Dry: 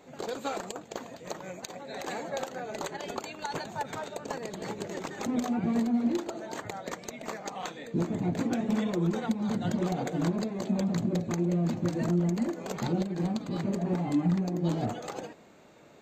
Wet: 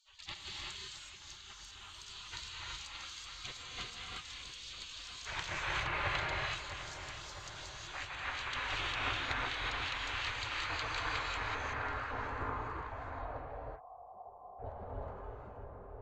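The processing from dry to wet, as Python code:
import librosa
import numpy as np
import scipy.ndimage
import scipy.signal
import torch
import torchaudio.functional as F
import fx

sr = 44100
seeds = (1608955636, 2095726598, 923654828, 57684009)

p1 = 10.0 ** (-33.5 / 20.0) * (np.abs((x / 10.0 ** (-33.5 / 20.0) + 3.0) % 4.0 - 2.0) - 1.0)
p2 = x + F.gain(torch.from_numpy(p1), -9.0).numpy()
p3 = fx.filter_sweep_lowpass(p2, sr, from_hz=2500.0, to_hz=320.0, start_s=10.97, end_s=13.4, q=1.6)
p4 = fx.spec_gate(p3, sr, threshold_db=-30, keep='weak')
p5 = fx.peak_eq(p4, sr, hz=84.0, db=4.0, octaves=2.3)
p6 = fx.echo_filtered(p5, sr, ms=657, feedback_pct=78, hz=1900.0, wet_db=-10.0)
p7 = fx.spec_box(p6, sr, start_s=4.29, length_s=0.38, low_hz=630.0, high_hz=2200.0, gain_db=-10)
p8 = fx.formant_cascade(p7, sr, vowel='a', at=(13.41, 14.59))
p9 = fx.rev_gated(p8, sr, seeds[0], gate_ms=400, shape='rising', drr_db=-3.0)
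y = F.gain(torch.from_numpy(p9), 7.5).numpy()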